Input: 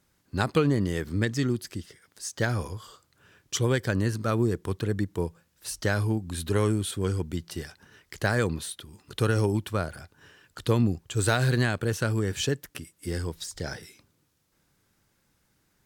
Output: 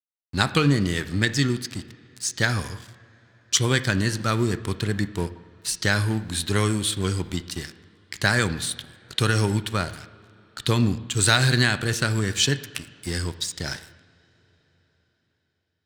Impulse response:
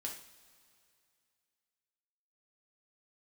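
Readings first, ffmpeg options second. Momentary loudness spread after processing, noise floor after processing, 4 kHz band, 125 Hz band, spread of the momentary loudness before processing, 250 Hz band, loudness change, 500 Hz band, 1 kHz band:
14 LU, −74 dBFS, +11.0 dB, +3.0 dB, 14 LU, +2.5 dB, +4.5 dB, −0.5 dB, +4.5 dB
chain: -filter_complex "[0:a]aeval=exprs='sgn(val(0))*max(abs(val(0))-0.00562,0)':channel_layout=same,equalizer=frequency=500:width_type=o:width=1:gain=-6,equalizer=frequency=2000:width_type=o:width=1:gain=4,equalizer=frequency=4000:width_type=o:width=1:gain=9,equalizer=frequency=8000:width_type=o:width=1:gain=7,asplit=2[link_01][link_02];[1:a]atrim=start_sample=2205,asetrate=23373,aresample=44100,lowpass=2800[link_03];[link_02][link_03]afir=irnorm=-1:irlink=0,volume=-11dB[link_04];[link_01][link_04]amix=inputs=2:normalize=0,volume=2.5dB"

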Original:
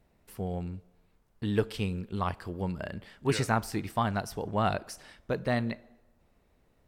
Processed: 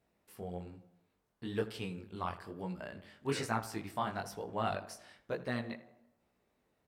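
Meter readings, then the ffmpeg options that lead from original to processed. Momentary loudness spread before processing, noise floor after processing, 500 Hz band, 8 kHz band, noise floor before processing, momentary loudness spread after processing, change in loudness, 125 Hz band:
12 LU, −79 dBFS, −6.5 dB, −6.0 dB, −68 dBFS, 12 LU, −7.5 dB, −11.0 dB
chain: -filter_complex "[0:a]asplit=2[link_01][link_02];[link_02]adelay=81,lowpass=frequency=2000:poles=1,volume=-14dB,asplit=2[link_03][link_04];[link_04]adelay=81,lowpass=frequency=2000:poles=1,volume=0.54,asplit=2[link_05][link_06];[link_06]adelay=81,lowpass=frequency=2000:poles=1,volume=0.54,asplit=2[link_07][link_08];[link_08]adelay=81,lowpass=frequency=2000:poles=1,volume=0.54,asplit=2[link_09][link_10];[link_10]adelay=81,lowpass=frequency=2000:poles=1,volume=0.54[link_11];[link_03][link_05][link_07][link_09][link_11]amix=inputs=5:normalize=0[link_12];[link_01][link_12]amix=inputs=2:normalize=0,flanger=delay=16.5:depth=7:speed=1.1,highpass=frequency=200:poles=1,volume=-3dB"

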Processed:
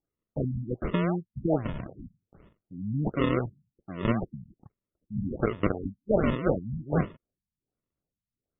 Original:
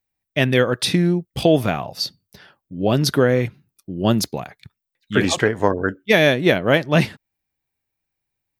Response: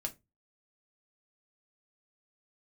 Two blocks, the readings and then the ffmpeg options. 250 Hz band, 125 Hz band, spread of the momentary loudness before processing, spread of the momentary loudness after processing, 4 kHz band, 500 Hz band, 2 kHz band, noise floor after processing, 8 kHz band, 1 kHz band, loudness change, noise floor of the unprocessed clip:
−9.0 dB, −8.5 dB, 11 LU, 14 LU, −24.0 dB, −12.0 dB, −18.5 dB, below −85 dBFS, below −40 dB, −10.0 dB, −10.5 dB, −82 dBFS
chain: -af "acrusher=samples=38:mix=1:aa=0.000001:lfo=1:lforange=38:lforate=1.3,afftfilt=real='re*lt(b*sr/1024,220*pow(3700/220,0.5+0.5*sin(2*PI*1.3*pts/sr)))':imag='im*lt(b*sr/1024,220*pow(3700/220,0.5+0.5*sin(2*PI*1.3*pts/sr)))':win_size=1024:overlap=0.75,volume=-9dB"

